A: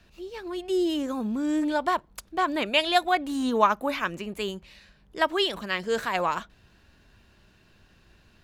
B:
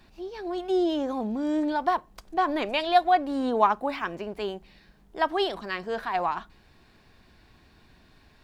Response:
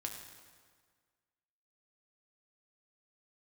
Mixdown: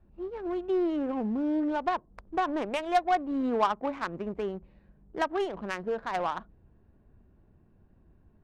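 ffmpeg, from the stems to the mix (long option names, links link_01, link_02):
-filter_complex "[0:a]adynamicequalizer=threshold=0.00794:dfrequency=470:dqfactor=4.4:tfrequency=470:tqfactor=4.4:attack=5:release=100:ratio=0.375:range=2.5:mode=boostabove:tftype=bell,acompressor=threshold=-30dB:ratio=16,acrusher=bits=3:mode=log:mix=0:aa=0.000001,volume=-2dB[link_01];[1:a]volume=-6.5dB[link_02];[link_01][link_02]amix=inputs=2:normalize=0,adynamicsmooth=sensitivity=1.5:basefreq=630"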